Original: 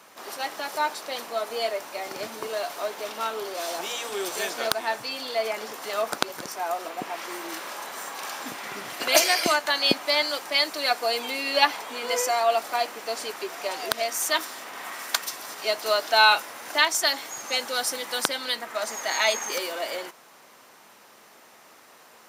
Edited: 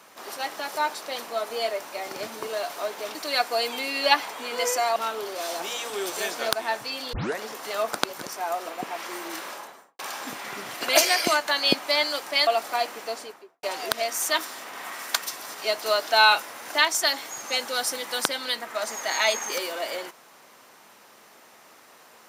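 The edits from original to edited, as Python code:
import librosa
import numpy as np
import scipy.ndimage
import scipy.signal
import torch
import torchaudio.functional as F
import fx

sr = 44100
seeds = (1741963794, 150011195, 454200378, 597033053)

y = fx.studio_fade_out(x, sr, start_s=7.63, length_s=0.55)
y = fx.studio_fade_out(y, sr, start_s=12.97, length_s=0.66)
y = fx.edit(y, sr, fx.tape_start(start_s=5.32, length_s=0.26),
    fx.move(start_s=10.66, length_s=1.81, to_s=3.15), tone=tone)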